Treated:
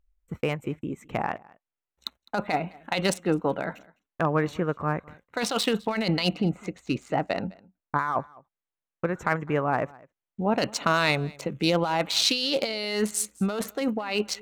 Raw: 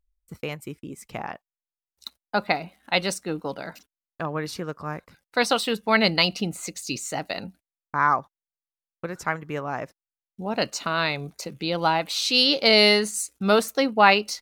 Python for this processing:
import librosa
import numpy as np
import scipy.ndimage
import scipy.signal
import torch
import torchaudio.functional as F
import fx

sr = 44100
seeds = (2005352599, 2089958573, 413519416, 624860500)

p1 = fx.wiener(x, sr, points=9)
p2 = fx.lowpass(p1, sr, hz=1600.0, slope=6, at=(6.35, 7.99))
p3 = fx.over_compress(p2, sr, threshold_db=-26.0, ratio=-1.0)
p4 = p3 + fx.echo_single(p3, sr, ms=207, db=-24.0, dry=0)
y = p4 * librosa.db_to_amplitude(1.5)